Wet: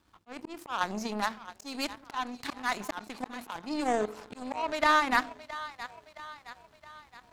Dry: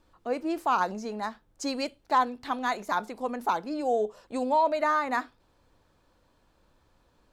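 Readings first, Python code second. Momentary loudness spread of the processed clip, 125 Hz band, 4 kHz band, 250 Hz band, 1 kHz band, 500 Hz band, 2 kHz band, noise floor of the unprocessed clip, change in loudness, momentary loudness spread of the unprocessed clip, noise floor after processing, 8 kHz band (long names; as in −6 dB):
21 LU, can't be measured, +3.0 dB, −3.0 dB, −4.0 dB, −6.0 dB, +2.5 dB, −67 dBFS, −3.0 dB, 10 LU, −62 dBFS, +1.5 dB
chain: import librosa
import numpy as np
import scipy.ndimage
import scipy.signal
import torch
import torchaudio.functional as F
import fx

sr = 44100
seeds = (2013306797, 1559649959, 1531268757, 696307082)

y = scipy.signal.sosfilt(scipy.signal.butter(2, 63.0, 'highpass', fs=sr, output='sos'), x)
y = fx.peak_eq(y, sr, hz=510.0, db=-11.0, octaves=0.63)
y = fx.auto_swell(y, sr, attack_ms=314.0)
y = fx.echo_split(y, sr, split_hz=540.0, low_ms=89, high_ms=668, feedback_pct=52, wet_db=-15.0)
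y = fx.power_curve(y, sr, exponent=2.0)
y = fx.env_flatten(y, sr, amount_pct=50)
y = y * 10.0 ** (7.0 / 20.0)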